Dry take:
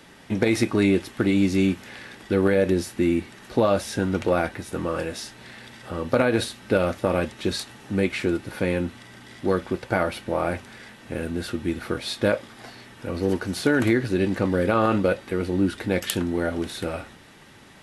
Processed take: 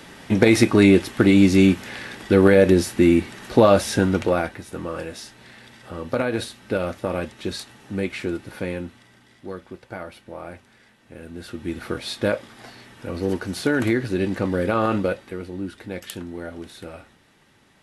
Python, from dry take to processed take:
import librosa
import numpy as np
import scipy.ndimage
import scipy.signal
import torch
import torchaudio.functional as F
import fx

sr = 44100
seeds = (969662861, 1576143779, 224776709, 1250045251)

y = fx.gain(x, sr, db=fx.line((3.97, 6.0), (4.62, -3.0), (8.56, -3.0), (9.45, -11.5), (11.15, -11.5), (11.81, -0.5), (15.0, -0.5), (15.5, -8.5)))